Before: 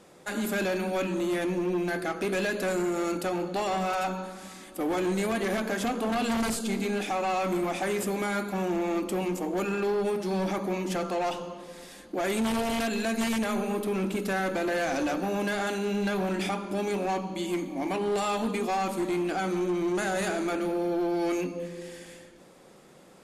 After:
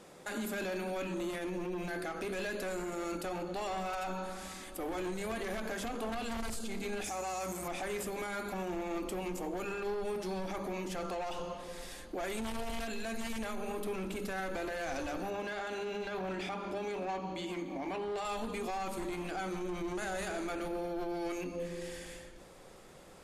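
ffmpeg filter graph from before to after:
-filter_complex "[0:a]asettb=1/sr,asplit=3[a][b][c];[a]atrim=end=7.044[d];[b]atrim=start=7.04:end=7.68,asetpts=PTS-STARTPTS,afade=t=in:d=0.004:c=qsin,afade=t=out:st=0.636:d=0.004:c=qsin,highpass=f=69:w=0.5412,highpass=f=69:w=1.3066,highshelf=f=4.8k:t=q:w=1.5:g=11,aeval=exprs='val(0)+0.00141*(sin(2*PI*60*n/s)+sin(2*PI*2*60*n/s)/2+sin(2*PI*3*60*n/s)/3+sin(2*PI*4*60*n/s)/4+sin(2*PI*5*60*n/s)/5)':c=same[e];[c]atrim=start=7.676[f];[d][e]acrossfade=d=0.004:c1=hsin:c2=qsin[g];[g][f]acrossfade=d=0.004:c1=qsin:c2=hsin,asettb=1/sr,asplit=3[h][i][j];[h]atrim=end=15.304[k];[i]atrim=start=15.3:end=18.25,asetpts=PTS-STARTPTS,afade=t=in:d=0.004:c=qsin,afade=t=out:st=2.946:d=0.004:c=qsin,highpass=f=83:p=1,equalizer=f=11k:w=0.76:g=-13,bandreject=f=50:t=h:w=6,bandreject=f=100:t=h:w=6,bandreject=f=150:t=h:w=6,bandreject=f=200:t=h:w=6,bandreject=f=250:t=h:w=6,bandreject=f=300:t=h:w=6,bandreject=f=350:t=h:w=6[l];[j]atrim=start=18.246[m];[k][l]acrossfade=d=0.004:c1=hsin:c2=qsin[n];[n][m]acrossfade=d=0.004:c1=qsin:c2=hsin,bandreject=f=50:t=h:w=6,bandreject=f=100:t=h:w=6,bandreject=f=150:t=h:w=6,bandreject=f=200:t=h:w=6,bandreject=f=250:t=h:w=6,bandreject=f=300:t=h:w=6,bandreject=f=350:t=h:w=6,asubboost=boost=5.5:cutoff=78,alimiter=level_in=6.5dB:limit=-24dB:level=0:latency=1:release=89,volume=-6.5dB"

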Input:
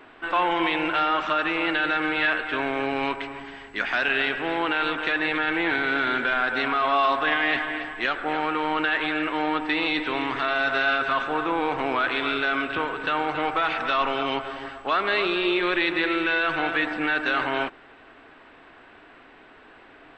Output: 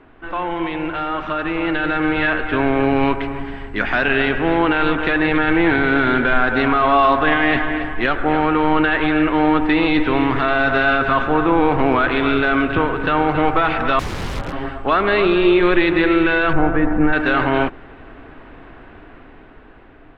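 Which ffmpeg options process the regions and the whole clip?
-filter_complex "[0:a]asettb=1/sr,asplit=3[a][b][c];[a]atrim=end=13.994[d];[b]atrim=start=13.99:end=14.53,asetpts=PTS-STARTPTS,afade=t=in:d=0.004:c=qsin,afade=t=out:st=0.536:d=0.004:c=qsin,aeval=exprs='val(0)*sin(2*PI*110*n/s)':c=same,aeval=exprs='(mod(23.7*val(0)+1,2)-1)/23.7':c=same[e];[c]atrim=start=14.526[f];[d][e]acrossfade=d=0.004:c1=hsin:c2=qsin[g];[g][f]acrossfade=d=0.004:c1=qsin:c2=hsin,asettb=1/sr,asplit=3[h][i][j];[h]atrim=end=16.534[k];[i]atrim=start=16.53:end=17.13,asetpts=PTS-STARTPTS,afade=t=in:d=0.004:c=qsin,afade=t=out:st=0.596:d=0.004:c=qsin,lowpass=1.3k,lowshelf=f=95:g=10[l];[j]atrim=start=17.126[m];[k][l]acrossfade=d=0.004:c1=hsin:c2=qsin[n];[n][m]acrossfade=d=0.004:c1=qsin:c2=hsin,dynaudnorm=f=530:g=7:m=11.5dB,aemphasis=mode=reproduction:type=riaa,volume=-2dB"

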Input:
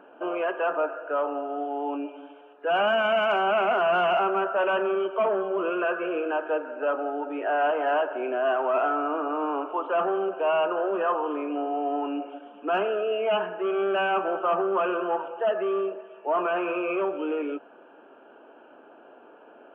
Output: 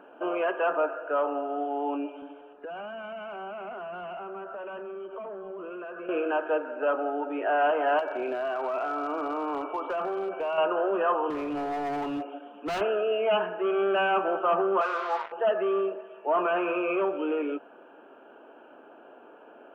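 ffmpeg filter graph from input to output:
-filter_complex "[0:a]asettb=1/sr,asplit=3[a][b][c];[a]atrim=end=2.224[d];[b]atrim=start=2.22:end=6.09,asetpts=PTS-STARTPTS,afade=t=in:d=0.004:c=qsin,afade=t=out:st=3.866:d=0.004:c=qsin,aemphasis=mode=reproduction:type=bsi,acompressor=threshold=-36dB:ratio=8:attack=3.2:release=140:knee=1:detection=peak[e];[c]atrim=start=6.086[f];[d][e]acrossfade=d=0.004:c1=hsin:c2=qsin[g];[g][f]acrossfade=d=0.004:c1=qsin:c2=hsin,asettb=1/sr,asplit=3[h][i][j];[h]atrim=end=7.994[k];[i]atrim=start=7.99:end=10.58,asetpts=PTS-STARTPTS,afade=t=in:d=0.004:c=qsin,afade=t=out:st=2.586:d=0.004:c=qsin,aeval=exprs='val(0)+0.00251*sin(2*PI*2300*n/s)':c=same,acompressor=threshold=-26dB:ratio=12:attack=3.2:release=140:knee=1:detection=peak,asoftclip=type=hard:threshold=-24.5dB[l];[j]atrim=start=10.576[m];[k][l]acrossfade=d=0.004:c1=hsin:c2=qsin[n];[n][m]acrossfade=d=0.004:c1=qsin:c2=hsin,asettb=1/sr,asplit=3[o][p][q];[o]atrim=end=11.304[r];[p]atrim=start=11.3:end=12.81,asetpts=PTS-STARTPTS,afade=t=in:d=0.004:c=qsin,afade=t=out:st=1.506:d=0.004:c=qsin,highpass=140,asoftclip=type=hard:threshold=-28dB[s];[q]atrim=start=12.806[t];[r][s]acrossfade=d=0.004:c1=hsin:c2=qsin[u];[u][t]acrossfade=d=0.004:c1=qsin:c2=hsin,asettb=1/sr,asplit=3[v][w][x];[v]atrim=end=14.814[y];[w]atrim=start=14.81:end=15.32,asetpts=PTS-STARTPTS,afade=t=in:d=0.004:c=qsin,afade=t=out:st=0.506:d=0.004:c=qsin,equalizer=f=1.2k:w=2.2:g=4.5,acrusher=bits=4:mix=0:aa=0.5,highpass=710,lowpass=2.1k[z];[x]atrim=start=15.316[aa];[y][z]acrossfade=d=0.004:c1=hsin:c2=qsin[ab];[ab][aa]acrossfade=d=0.004:c1=qsin:c2=hsin"

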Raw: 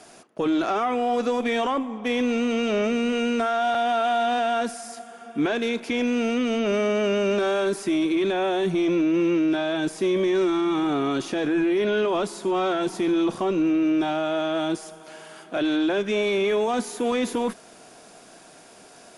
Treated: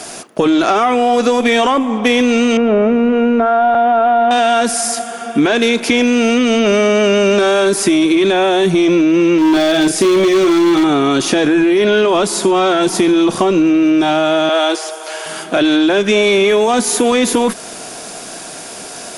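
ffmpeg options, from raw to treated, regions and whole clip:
-filter_complex "[0:a]asettb=1/sr,asplit=3[a][b][c];[a]atrim=end=2.574[d];[b]atrim=start=2.57:end=4.31,asetpts=PTS-STARTPTS,afade=t=in:d=0.004:c=qsin,afade=t=out:st=1.736:d=0.004:c=qsin,aeval=exprs='val(0)+0.5*0.00944*sgn(val(0))':c=same,lowpass=1.2k[e];[c]atrim=start=4.306[f];[d][e]acrossfade=d=0.004:c1=hsin:c2=qsin[g];[g][f]acrossfade=d=0.004:c1=qsin:c2=hsin,asettb=1/sr,asplit=3[h][i][j];[h]atrim=end=9.384[k];[i]atrim=start=9.38:end=10.84,asetpts=PTS-STARTPTS,afade=t=in:d=0.004:c=qsin,afade=t=out:st=1.456:d=0.004:c=qsin,equalizer=f=1k:t=o:w=0.33:g=-9.5,asplit=2[l][m];[m]adelay=35,volume=-6dB[n];[l][n]amix=inputs=2:normalize=0,atrim=end_sample=64386,asoftclip=type=hard:threshold=-20dB[o];[j]atrim=start=10.836[p];[k][o]acrossfade=d=0.004:c1=hsin:c2=qsin[q];[q][p]acrossfade=d=0.004:c1=qsin:c2=hsin,asettb=1/sr,asplit=3[r][s][t];[r]atrim=end=14.494[u];[s]atrim=start=14.49:end=15.26,asetpts=PTS-STARTPTS,afade=t=in:d=0.004:c=qsin,afade=t=out:st=0.766:d=0.004:c=qsin,acrossover=split=5600[v][w];[w]acompressor=threshold=-54dB:ratio=4:attack=1:release=60[x];[v][x]amix=inputs=2:normalize=0,highpass=f=410:w=0.5412,highpass=f=410:w=1.3066[y];[t]atrim=start=15.256[z];[u][y]acrossfade=d=0.004:c1=hsin:c2=qsin[aa];[aa][z]acrossfade=d=0.004:c1=qsin:c2=hsin,acompressor=threshold=-27dB:ratio=4,highshelf=f=3.8k:g=7,alimiter=level_in=17.5dB:limit=-1dB:release=50:level=0:latency=1,volume=-1dB"

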